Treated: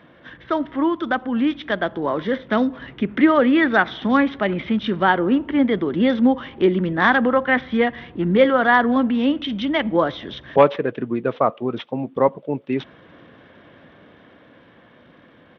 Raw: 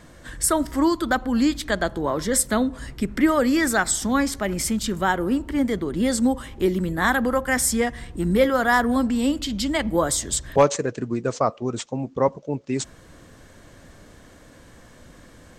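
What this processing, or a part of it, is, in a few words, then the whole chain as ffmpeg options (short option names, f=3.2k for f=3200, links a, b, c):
Bluetooth headset: -af "highpass=160,dynaudnorm=f=370:g=13:m=7.5dB,aresample=8000,aresample=44100" -ar 32000 -c:a sbc -b:a 64k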